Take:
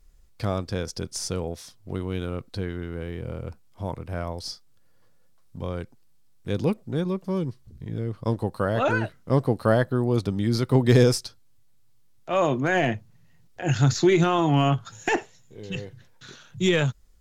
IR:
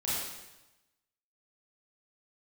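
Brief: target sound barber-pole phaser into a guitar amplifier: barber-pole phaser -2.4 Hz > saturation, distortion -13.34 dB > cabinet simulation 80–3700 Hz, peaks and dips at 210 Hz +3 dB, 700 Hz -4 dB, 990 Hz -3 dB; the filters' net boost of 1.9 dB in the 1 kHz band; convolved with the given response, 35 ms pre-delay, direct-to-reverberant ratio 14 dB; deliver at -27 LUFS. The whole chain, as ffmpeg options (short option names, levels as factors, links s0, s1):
-filter_complex "[0:a]equalizer=f=1000:t=o:g=6,asplit=2[s0][s1];[1:a]atrim=start_sample=2205,adelay=35[s2];[s1][s2]afir=irnorm=-1:irlink=0,volume=0.0944[s3];[s0][s3]amix=inputs=2:normalize=0,asplit=2[s4][s5];[s5]afreqshift=-2.4[s6];[s4][s6]amix=inputs=2:normalize=1,asoftclip=threshold=0.119,highpass=80,equalizer=f=210:t=q:w=4:g=3,equalizer=f=700:t=q:w=4:g=-4,equalizer=f=990:t=q:w=4:g=-3,lowpass=f=3700:w=0.5412,lowpass=f=3700:w=1.3066,volume=1.41"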